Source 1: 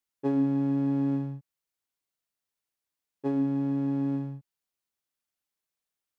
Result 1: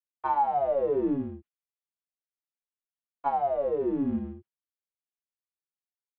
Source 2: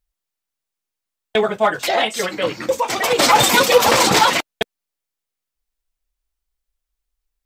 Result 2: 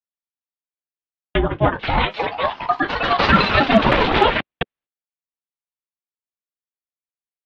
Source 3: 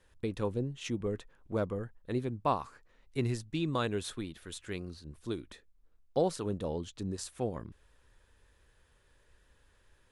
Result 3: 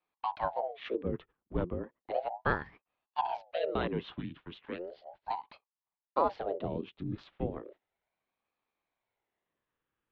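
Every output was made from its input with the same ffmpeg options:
-filter_complex "[0:a]agate=range=-16dB:threshold=-50dB:ratio=16:detection=peak,lowshelf=f=360:g=3,acrossover=split=370[a][b];[a]alimiter=limit=-20.5dB:level=0:latency=1:release=185[c];[c][b]amix=inputs=2:normalize=0,highpass=f=160:t=q:w=0.5412,highpass=f=160:t=q:w=1.307,lowpass=f=3.6k:t=q:w=0.5176,lowpass=f=3.6k:t=q:w=0.7071,lowpass=f=3.6k:t=q:w=1.932,afreqshift=-270,asoftclip=type=hard:threshold=-3dB,aeval=exprs='val(0)*sin(2*PI*600*n/s+600*0.65/0.35*sin(2*PI*0.35*n/s))':c=same,volume=2dB"

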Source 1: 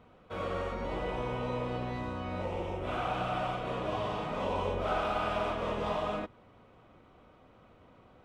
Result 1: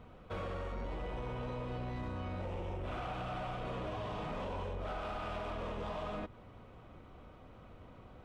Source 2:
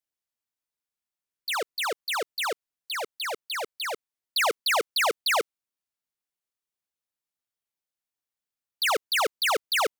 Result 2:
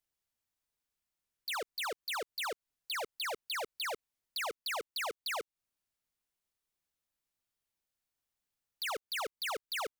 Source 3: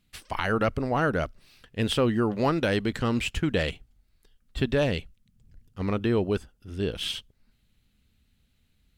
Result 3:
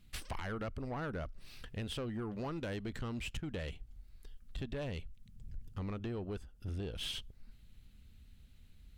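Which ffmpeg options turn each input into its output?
-af "lowshelf=f=100:g=11,acompressor=threshold=-35dB:ratio=12,asoftclip=type=tanh:threshold=-35dB,volume=1.5dB"

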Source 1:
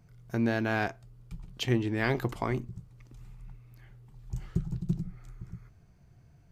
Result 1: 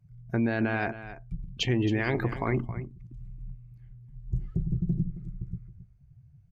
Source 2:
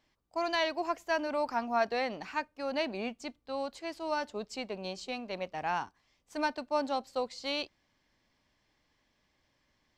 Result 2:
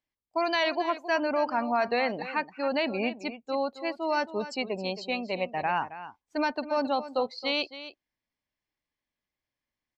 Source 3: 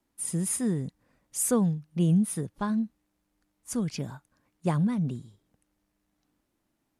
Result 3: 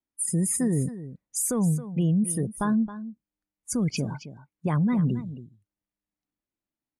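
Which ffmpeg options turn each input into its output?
-filter_complex "[0:a]afftdn=nr=24:nf=-44,acontrast=69,alimiter=limit=-18dB:level=0:latency=1:release=55,equalizer=f=2.3k:t=o:w=0.77:g=3,asplit=2[a][b];[b]aecho=0:1:270:0.211[c];[a][c]amix=inputs=2:normalize=0" -ar 32000 -c:a ac3 -b:a 320k

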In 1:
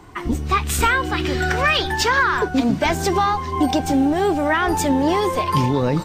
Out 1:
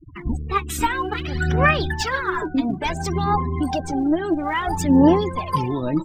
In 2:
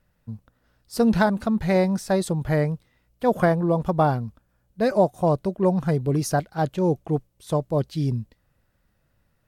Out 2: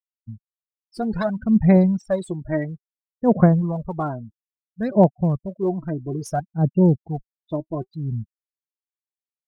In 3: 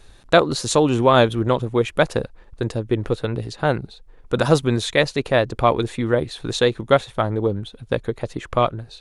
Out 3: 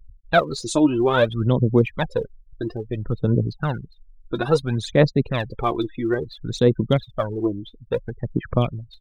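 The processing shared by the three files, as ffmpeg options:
-af "afftfilt=real='re*gte(hypot(re,im),0.0355)':imag='im*gte(hypot(re,im),0.0355)':win_size=1024:overlap=0.75,equalizer=f=180:t=o:w=1.4:g=7.5,aphaser=in_gain=1:out_gain=1:delay=3.2:decay=0.71:speed=0.59:type=sinusoidal,volume=-8dB"

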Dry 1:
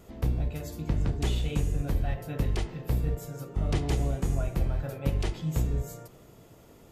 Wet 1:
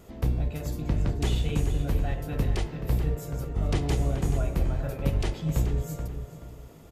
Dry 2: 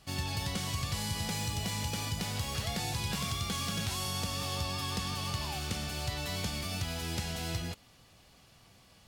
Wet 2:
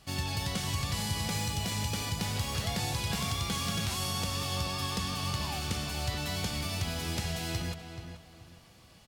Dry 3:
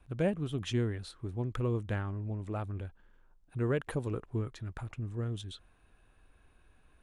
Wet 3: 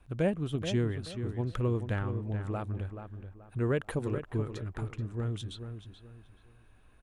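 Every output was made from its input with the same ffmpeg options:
-filter_complex "[0:a]asplit=2[a][b];[b]adelay=430,lowpass=f=2.7k:p=1,volume=-8.5dB,asplit=2[c][d];[d]adelay=430,lowpass=f=2.7k:p=1,volume=0.31,asplit=2[e][f];[f]adelay=430,lowpass=f=2.7k:p=1,volume=0.31,asplit=2[g][h];[h]adelay=430,lowpass=f=2.7k:p=1,volume=0.31[i];[a][c][e][g][i]amix=inputs=5:normalize=0,volume=1.5dB"

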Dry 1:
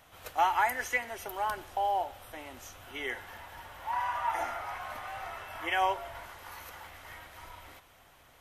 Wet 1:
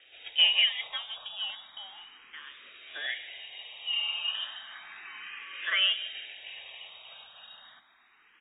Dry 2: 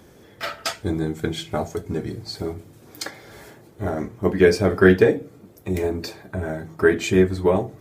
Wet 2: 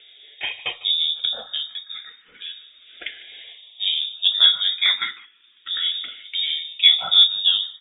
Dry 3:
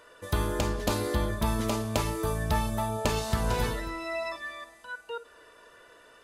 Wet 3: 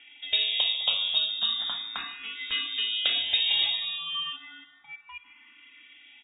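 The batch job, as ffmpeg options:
-filter_complex "[0:a]bandreject=f=50:t=h:w=6,bandreject=f=100:t=h:w=6,bandreject=f=150:t=h:w=6,bandreject=f=200:t=h:w=6,bandreject=f=250:t=h:w=6,bandreject=f=300:t=h:w=6,bandreject=f=350:t=h:w=6,bandreject=f=400:t=h:w=6,acrossover=split=2200[a][b];[a]volume=5.5dB,asoftclip=hard,volume=-5.5dB[c];[c][b]amix=inputs=2:normalize=0,asplit=2[d][e];[e]adelay=150,highpass=300,lowpass=3.4k,asoftclip=type=hard:threshold=-14dB,volume=-17dB[f];[d][f]amix=inputs=2:normalize=0,lowpass=f=3.2k:t=q:w=0.5098,lowpass=f=3.2k:t=q:w=0.6013,lowpass=f=3.2k:t=q:w=0.9,lowpass=f=3.2k:t=q:w=2.563,afreqshift=-3800,asplit=2[g][h];[h]afreqshift=0.33[i];[g][i]amix=inputs=2:normalize=1,volume=3.5dB"

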